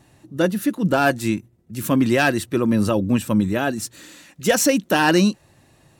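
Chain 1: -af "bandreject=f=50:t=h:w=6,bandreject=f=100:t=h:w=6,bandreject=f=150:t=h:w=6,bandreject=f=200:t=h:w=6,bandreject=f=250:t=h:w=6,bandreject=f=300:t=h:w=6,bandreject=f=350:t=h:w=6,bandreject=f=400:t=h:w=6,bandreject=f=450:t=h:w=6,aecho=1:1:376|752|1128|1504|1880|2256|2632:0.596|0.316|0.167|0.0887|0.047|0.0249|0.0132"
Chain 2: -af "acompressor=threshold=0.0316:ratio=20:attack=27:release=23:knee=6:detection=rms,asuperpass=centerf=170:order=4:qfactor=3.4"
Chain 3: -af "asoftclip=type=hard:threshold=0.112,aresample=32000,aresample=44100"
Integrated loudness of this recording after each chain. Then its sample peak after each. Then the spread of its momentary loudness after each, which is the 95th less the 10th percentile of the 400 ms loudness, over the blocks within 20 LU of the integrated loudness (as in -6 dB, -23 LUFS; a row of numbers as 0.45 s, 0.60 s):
-19.5 LUFS, -41.5 LUFS, -24.0 LUFS; -3.0 dBFS, -26.0 dBFS, -16.0 dBFS; 7 LU, 12 LU, 11 LU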